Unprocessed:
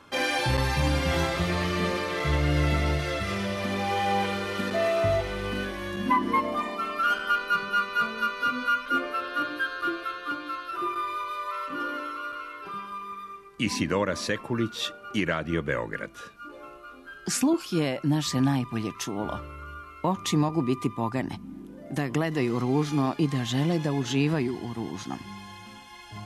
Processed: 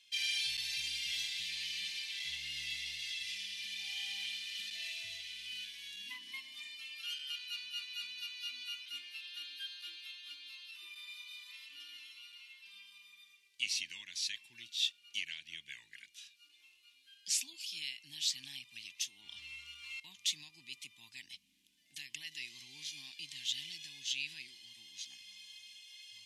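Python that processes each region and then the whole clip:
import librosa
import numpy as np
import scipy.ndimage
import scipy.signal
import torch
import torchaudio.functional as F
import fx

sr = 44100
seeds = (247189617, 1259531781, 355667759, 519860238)

y = fx.chain(x, sr, fx.highpass(hz=43.0, slope=12),
    fx.peak_eq(hz=12000.0, db=-10.0, octaves=0.59),
    fx.env_flatten(amount_pct=100), at=(19.21, 20.0))
y = scipy.signal.sosfilt(scipy.signal.cheby2(4, 40, 1400.0, 'highpass', fs=sr, output='sos'), y)
y = fx.high_shelf(y, sr, hz=8000.0, db=-11.0)
y = y * librosa.db_to_amplitude(1.0)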